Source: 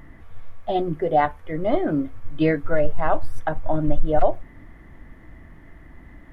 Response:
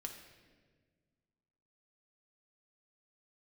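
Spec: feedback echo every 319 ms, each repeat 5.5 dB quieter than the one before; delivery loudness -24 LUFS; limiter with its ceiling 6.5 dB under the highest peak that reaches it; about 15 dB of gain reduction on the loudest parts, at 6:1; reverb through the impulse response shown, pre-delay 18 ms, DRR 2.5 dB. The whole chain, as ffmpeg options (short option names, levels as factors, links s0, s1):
-filter_complex "[0:a]acompressor=threshold=0.0501:ratio=6,alimiter=level_in=1.06:limit=0.0631:level=0:latency=1,volume=0.944,aecho=1:1:319|638|957|1276|1595|1914|2233:0.531|0.281|0.149|0.079|0.0419|0.0222|0.0118,asplit=2[s0][s1];[1:a]atrim=start_sample=2205,adelay=18[s2];[s1][s2]afir=irnorm=-1:irlink=0,volume=1.06[s3];[s0][s3]amix=inputs=2:normalize=0,volume=3.16"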